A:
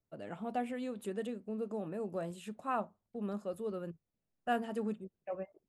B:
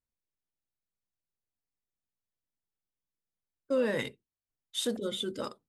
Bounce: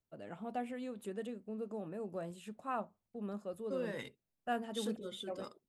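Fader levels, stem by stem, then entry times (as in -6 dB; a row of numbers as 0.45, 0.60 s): -3.5, -11.0 dB; 0.00, 0.00 s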